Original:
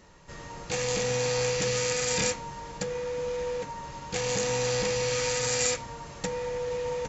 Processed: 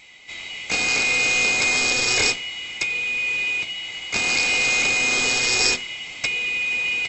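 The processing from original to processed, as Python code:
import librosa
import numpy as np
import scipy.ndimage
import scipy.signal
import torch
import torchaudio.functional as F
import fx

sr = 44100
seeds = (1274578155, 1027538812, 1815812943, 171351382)

y = fx.band_swap(x, sr, width_hz=2000)
y = y * librosa.db_to_amplitude(7.5)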